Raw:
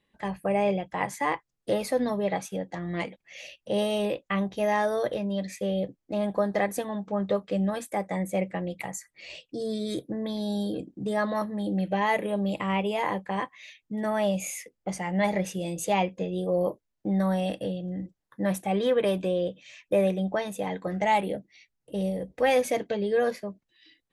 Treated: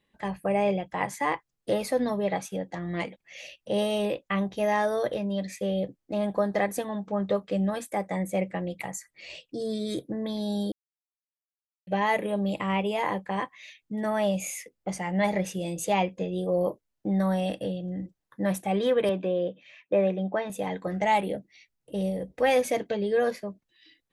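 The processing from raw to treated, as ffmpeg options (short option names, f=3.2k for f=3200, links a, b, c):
-filter_complex "[0:a]asettb=1/sr,asplit=3[a][b][c];[a]atrim=end=19.094[d];[b]atrim=start=19.09:end=20.5,asetpts=PTS-STARTPTS,afade=t=in:d=0.004:c=qsin,afade=t=out:st=1.406:d=0.004:c=qsin,highpass=160,lowpass=2.7k[e];[c]atrim=start=20.496[f];[d][e]acrossfade=d=0.004:c1=hsin:c2=qsin[g];[g][f]acrossfade=d=0.004:c1=qsin:c2=hsin,asplit=3[h][i][j];[h]atrim=end=10.72,asetpts=PTS-STARTPTS,afade=t=out:st=10.716:d=0.004:c=hsin[k];[i]atrim=start=10.72:end=11.87,asetpts=PTS-STARTPTS,volume=0[l];[j]atrim=start=11.87,asetpts=PTS-STARTPTS,afade=t=in:d=0.004:c=hsin[m];[k][l][m]concat=n=3:v=0:a=1"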